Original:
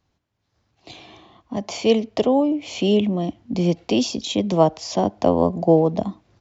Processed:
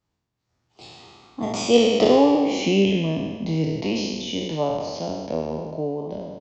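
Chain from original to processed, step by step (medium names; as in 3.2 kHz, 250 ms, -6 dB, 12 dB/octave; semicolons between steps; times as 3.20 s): spectral sustain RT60 1.60 s; Doppler pass-by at 2.14 s, 35 m/s, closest 26 m; doubling 25 ms -11 dB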